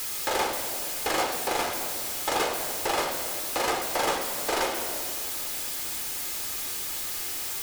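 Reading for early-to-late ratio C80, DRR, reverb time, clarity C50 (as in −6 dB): 7.0 dB, 4.0 dB, 2.3 s, 6.0 dB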